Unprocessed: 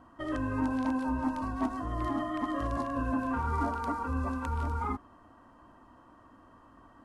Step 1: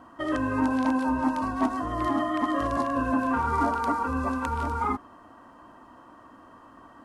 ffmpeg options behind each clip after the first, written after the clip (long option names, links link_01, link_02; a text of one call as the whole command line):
ffmpeg -i in.wav -af "lowshelf=frequency=120:gain=-12,volume=7.5dB" out.wav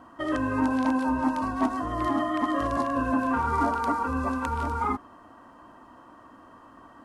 ffmpeg -i in.wav -af anull out.wav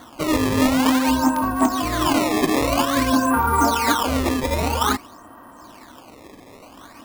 ffmpeg -i in.wav -af "acrusher=samples=17:mix=1:aa=0.000001:lfo=1:lforange=27.2:lforate=0.51,volume=7dB" out.wav